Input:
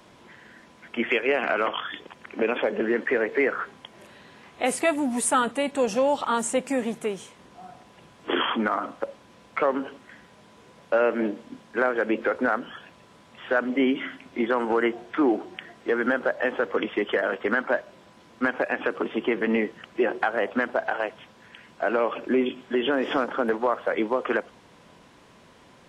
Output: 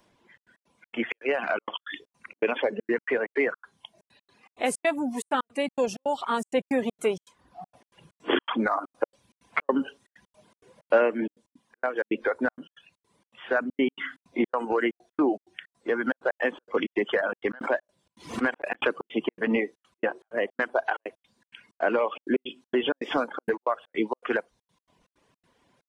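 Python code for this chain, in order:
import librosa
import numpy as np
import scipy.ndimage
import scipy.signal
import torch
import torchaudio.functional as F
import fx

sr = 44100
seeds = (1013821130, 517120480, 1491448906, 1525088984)

y = fx.dereverb_blind(x, sr, rt60_s=0.92)
y = fx.notch(y, sr, hz=1300.0, q=15.0)
y = fx.noise_reduce_blind(y, sr, reduce_db=10)
y = fx.rider(y, sr, range_db=5, speed_s=0.5)
y = fx.step_gate(y, sr, bpm=161, pattern='xxxx.x.xx.xx.', floor_db=-60.0, edge_ms=4.5)
y = fx.pre_swell(y, sr, db_per_s=130.0, at=(17.5, 18.92))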